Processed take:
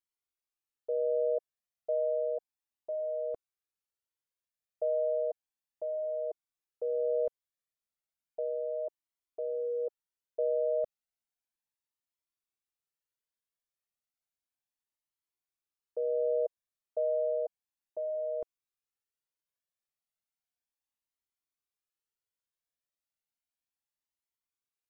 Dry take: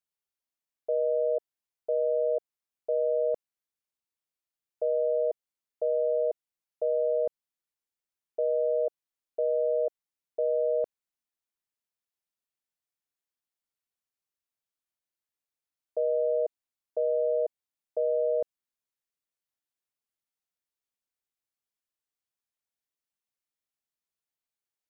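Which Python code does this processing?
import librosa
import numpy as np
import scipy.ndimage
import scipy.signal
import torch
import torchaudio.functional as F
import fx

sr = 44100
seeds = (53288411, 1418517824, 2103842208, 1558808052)

y = fx.comb_cascade(x, sr, direction='rising', hz=0.33)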